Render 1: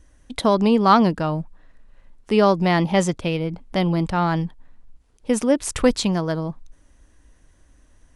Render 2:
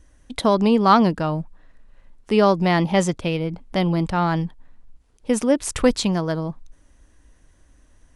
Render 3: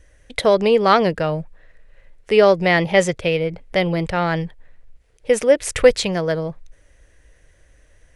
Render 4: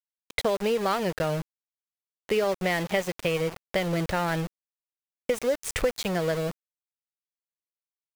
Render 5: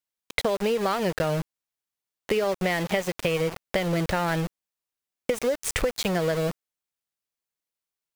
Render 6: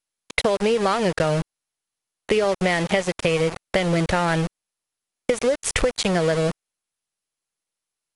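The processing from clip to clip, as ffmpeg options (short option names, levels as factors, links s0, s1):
-af anull
-af "equalizer=f=125:t=o:w=1:g=3,equalizer=f=250:t=o:w=1:g=-11,equalizer=f=500:t=o:w=1:g=10,equalizer=f=1000:t=o:w=1:g=-7,equalizer=f=2000:t=o:w=1:g=9,volume=1.12"
-af "acompressor=threshold=0.0891:ratio=5,aeval=exprs='val(0)*gte(abs(val(0)),0.0355)':c=same,volume=0.794"
-af "acompressor=threshold=0.0398:ratio=3,volume=1.88"
-af "volume=1.68" -ar 44100 -c:a mp2 -b:a 64k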